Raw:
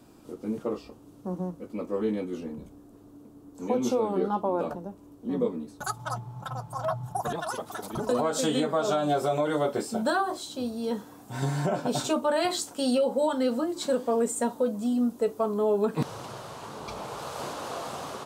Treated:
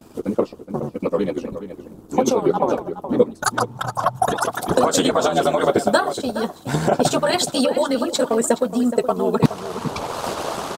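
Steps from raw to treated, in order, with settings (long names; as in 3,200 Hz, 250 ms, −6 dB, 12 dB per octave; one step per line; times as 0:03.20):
harmonic and percussive parts rebalanced percussive +8 dB
time stretch by overlap-add 0.59×, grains 24 ms
transient designer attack +2 dB, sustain −5 dB
noise gate with hold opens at −43 dBFS
slap from a distant wall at 72 metres, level −11 dB
level +6 dB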